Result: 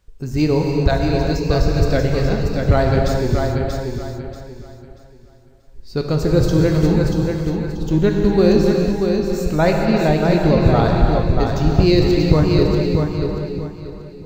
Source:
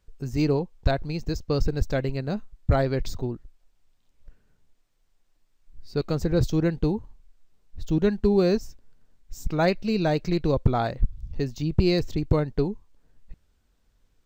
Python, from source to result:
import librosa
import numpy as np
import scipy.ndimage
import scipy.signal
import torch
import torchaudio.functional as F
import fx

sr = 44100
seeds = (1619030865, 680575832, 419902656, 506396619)

y = fx.air_absorb(x, sr, metres=110.0, at=(9.46, 10.43))
y = fx.echo_feedback(y, sr, ms=635, feedback_pct=28, wet_db=-5)
y = fx.rev_gated(y, sr, seeds[0], gate_ms=440, shape='flat', drr_db=0.5)
y = y * librosa.db_to_amplitude(5.5)